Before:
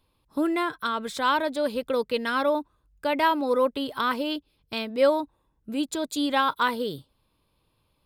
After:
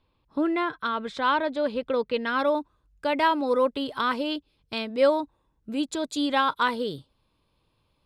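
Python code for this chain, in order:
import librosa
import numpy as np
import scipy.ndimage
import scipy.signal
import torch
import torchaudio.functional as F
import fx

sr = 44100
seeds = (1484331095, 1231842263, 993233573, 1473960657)

y = fx.lowpass(x, sr, hz=fx.steps((0.0, 3700.0), (2.39, 8000.0)), slope=12)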